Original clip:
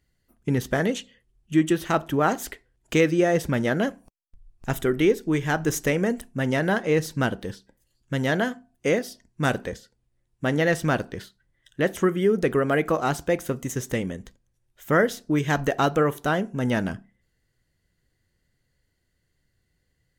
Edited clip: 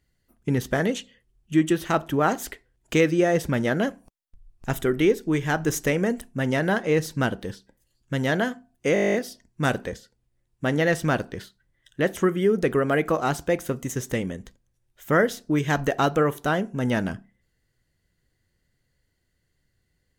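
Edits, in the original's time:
8.94 s: stutter 0.02 s, 11 plays

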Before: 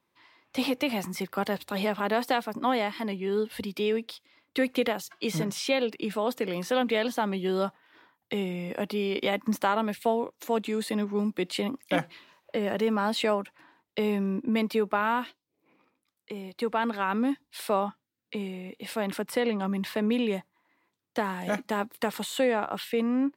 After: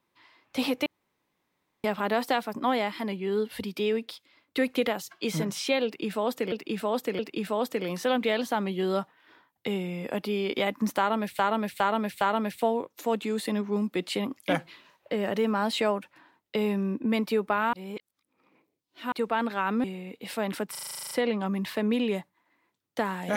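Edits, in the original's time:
0.86–1.84 s: room tone
5.85–6.52 s: loop, 3 plays
9.64–10.05 s: loop, 4 plays
15.16–16.55 s: reverse
17.27–18.43 s: delete
19.30 s: stutter 0.04 s, 11 plays

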